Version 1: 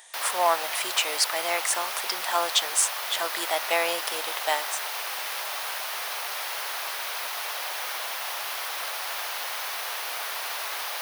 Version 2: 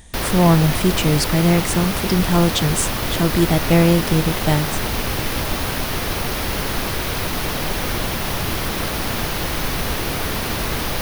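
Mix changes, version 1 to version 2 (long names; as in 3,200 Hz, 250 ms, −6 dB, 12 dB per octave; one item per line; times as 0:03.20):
background +6.0 dB
master: remove high-pass filter 680 Hz 24 dB per octave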